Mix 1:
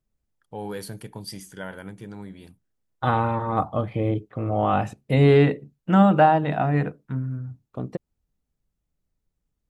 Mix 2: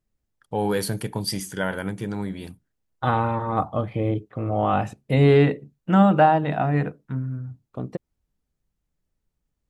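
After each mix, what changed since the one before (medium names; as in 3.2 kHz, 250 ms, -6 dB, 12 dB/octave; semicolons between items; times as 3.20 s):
first voice +9.5 dB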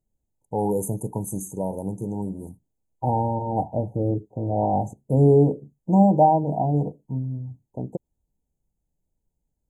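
master: add brick-wall FIR band-stop 980–6100 Hz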